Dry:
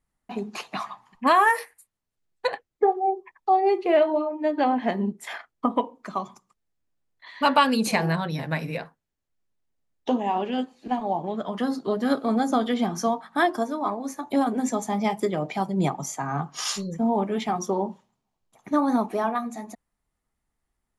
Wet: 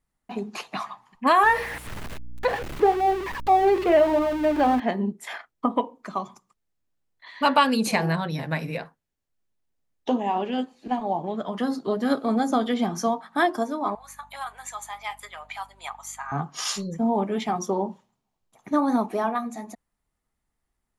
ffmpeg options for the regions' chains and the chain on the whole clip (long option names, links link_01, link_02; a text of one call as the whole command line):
ffmpeg -i in.wav -filter_complex "[0:a]asettb=1/sr,asplit=3[link_01][link_02][link_03];[link_01]atrim=end=1.434[link_04];[link_02]atrim=start=1.43:end=4.8,asetpts=PTS-STARTPTS,afade=type=in:duration=0.004:curve=qsin,afade=type=out:start_time=3.366:duration=0.004:curve=qsin,aeval=exprs='val(0)+0.5*0.0531*sgn(val(0))':channel_layout=same,acrossover=split=3400[link_05][link_06];[link_06]acompressor=threshold=-48dB:ratio=4:attack=1:release=60[link_07];[link_05][link_07]amix=inputs=2:normalize=0,aeval=exprs='val(0)+0.00631*(sin(2*PI*60*n/s)+sin(2*PI*2*60*n/s)/2+sin(2*PI*3*60*n/s)/3+sin(2*PI*4*60*n/s)/4+sin(2*PI*5*60*n/s)/5)':channel_layout=same[link_08];[link_03]atrim=start=4.796[link_09];[link_04][link_08]acrossfade=duration=0.004:curve1=hsin:curve2=qsin[link_10];[link_10][link_09]acrossfade=duration=0.004:curve1=qsin:curve2=hsin,asettb=1/sr,asplit=3[link_11][link_12][link_13];[link_11]atrim=end=13.954[link_14];[link_12]atrim=start=13.95:end=16.32,asetpts=PTS-STARTPTS,afade=type=in:duration=0.004:curve=qsin,afade=type=out:start_time=2.366:duration=0.004:curve=qsin,highpass=frequency=1000:width=0.5412,highpass=frequency=1000:width=1.3066,equalizer=frequency=5500:width=4.2:gain=-13,aeval=exprs='val(0)+0.00141*(sin(2*PI*50*n/s)+sin(2*PI*2*50*n/s)/2+sin(2*PI*3*50*n/s)/3+sin(2*PI*4*50*n/s)/4+sin(2*PI*5*50*n/s)/5)':channel_layout=same[link_15];[link_13]atrim=start=16.316[link_16];[link_14][link_15]acrossfade=duration=0.004:curve1=hsin:curve2=qsin[link_17];[link_17][link_16]acrossfade=duration=0.004:curve1=qsin:curve2=hsin" out.wav